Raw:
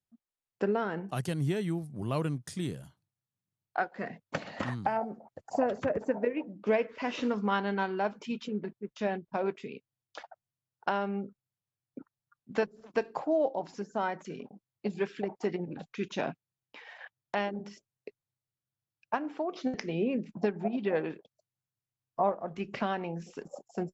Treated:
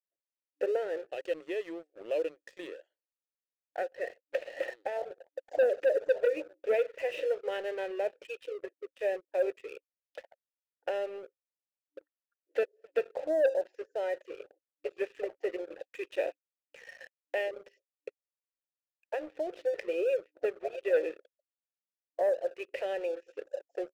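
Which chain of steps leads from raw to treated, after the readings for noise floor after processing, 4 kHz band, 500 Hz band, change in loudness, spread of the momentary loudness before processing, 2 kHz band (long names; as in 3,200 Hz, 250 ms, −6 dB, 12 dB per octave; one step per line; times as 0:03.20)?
below −85 dBFS, −4.5 dB, +2.5 dB, 0.0 dB, 18 LU, −2.0 dB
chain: brick-wall band-pass 300–8,700 Hz
dynamic equaliser 1,600 Hz, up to −6 dB, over −51 dBFS, Q 3.3
formant filter e
leveller curve on the samples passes 2
level +3.5 dB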